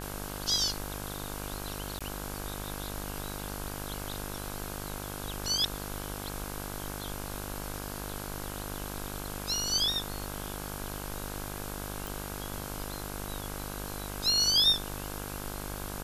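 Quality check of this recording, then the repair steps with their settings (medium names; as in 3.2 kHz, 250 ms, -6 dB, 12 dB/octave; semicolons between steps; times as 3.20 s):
buzz 50 Hz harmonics 33 -40 dBFS
1.99–2.01 s: dropout 16 ms
12.07 s: pop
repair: de-click; de-hum 50 Hz, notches 33; interpolate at 1.99 s, 16 ms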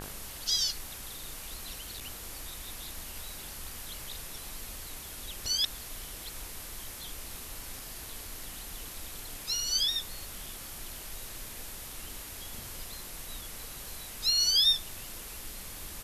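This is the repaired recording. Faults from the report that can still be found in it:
nothing left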